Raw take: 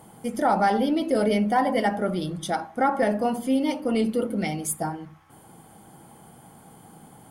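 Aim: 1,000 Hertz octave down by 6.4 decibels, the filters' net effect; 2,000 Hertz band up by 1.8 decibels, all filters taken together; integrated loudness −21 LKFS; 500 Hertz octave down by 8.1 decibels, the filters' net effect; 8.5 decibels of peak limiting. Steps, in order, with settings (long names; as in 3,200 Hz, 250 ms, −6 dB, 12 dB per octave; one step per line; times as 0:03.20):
parametric band 500 Hz −8.5 dB
parametric band 1,000 Hz −6 dB
parametric band 2,000 Hz +4.5 dB
level +10 dB
brickwall limiter −12 dBFS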